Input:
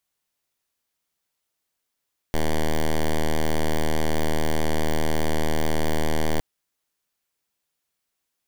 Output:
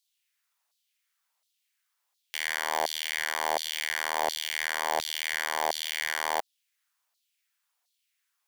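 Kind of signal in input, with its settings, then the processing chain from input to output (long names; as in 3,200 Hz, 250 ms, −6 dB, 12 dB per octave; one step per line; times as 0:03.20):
pulse wave 78.2 Hz, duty 6% −20 dBFS 4.06 s
auto-filter high-pass saw down 1.4 Hz 710–4,300 Hz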